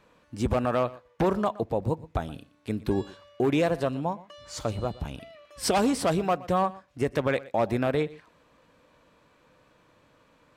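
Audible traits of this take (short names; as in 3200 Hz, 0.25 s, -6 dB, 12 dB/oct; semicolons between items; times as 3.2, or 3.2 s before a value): noise floor -63 dBFS; spectral tilt -5.5 dB/oct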